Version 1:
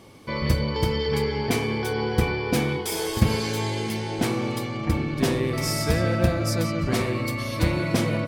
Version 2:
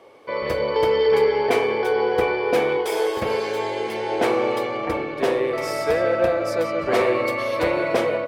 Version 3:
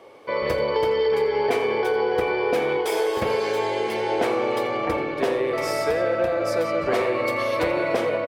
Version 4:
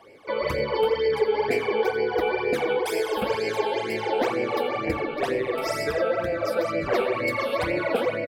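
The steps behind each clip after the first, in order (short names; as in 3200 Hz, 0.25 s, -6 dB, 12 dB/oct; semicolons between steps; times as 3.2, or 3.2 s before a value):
bell 470 Hz +10 dB 1.2 oct; AGC; three-band isolator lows -19 dB, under 440 Hz, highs -12 dB, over 3100 Hz
compressor, threshold -20 dBFS, peak gain reduction 6.5 dB; echo 84 ms -17.5 dB; gain +1.5 dB
phaser stages 12, 2.1 Hz, lowest notch 100–1200 Hz; gain +1.5 dB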